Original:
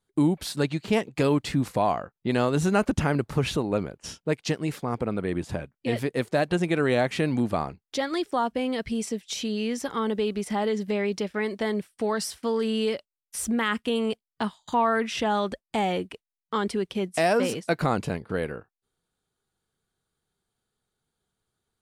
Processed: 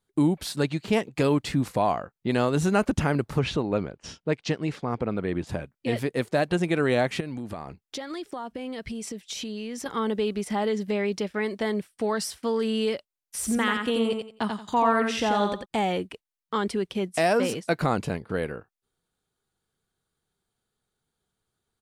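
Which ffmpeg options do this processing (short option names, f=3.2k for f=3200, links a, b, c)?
-filter_complex "[0:a]asettb=1/sr,asplit=3[a][b][c];[a]atrim=end=3.394[d];[b]atrim=start=3.39:end=5.47,asetpts=PTS-STARTPTS,afade=t=in:d=0.004:c=qsin,afade=t=out:st=2.076:d=0.004:c=qsin,lowpass=5.4k[e];[c]atrim=start=5.466[f];[d][e]acrossfade=d=0.004:c1=hsin:c2=qsin[g];[g][f]acrossfade=d=0.004:c1=qsin:c2=hsin,asettb=1/sr,asplit=3[h][i][j];[h]atrim=end=7.204[k];[i]atrim=start=7.2:end=9.86,asetpts=PTS-STARTPTS,afade=t=in:d=0.004:c=qsin,afade=t=out:st=2.656:d=0.004:c=qsin,acompressor=threshold=-30dB:ratio=12:attack=3.2:release=140:knee=1:detection=peak[l];[j]atrim=start=9.856[m];[k][l]acrossfade=d=0.004:c1=hsin:c2=qsin[n];[n][m]acrossfade=d=0.004:c1=qsin:c2=hsin,asplit=3[o][p][q];[o]afade=t=out:st=13.41:d=0.02[r];[p]aecho=1:1:88|176|264:0.596|0.143|0.0343,afade=t=in:st=13.41:d=0.02,afade=t=out:st=15.64:d=0.02[s];[q]afade=t=in:st=15.64:d=0.02[t];[r][s][t]amix=inputs=3:normalize=0"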